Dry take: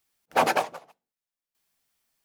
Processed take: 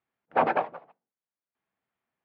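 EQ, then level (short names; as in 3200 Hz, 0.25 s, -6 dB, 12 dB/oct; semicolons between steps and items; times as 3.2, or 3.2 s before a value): BPF 100–2100 Hz; air absorption 260 m; 0.0 dB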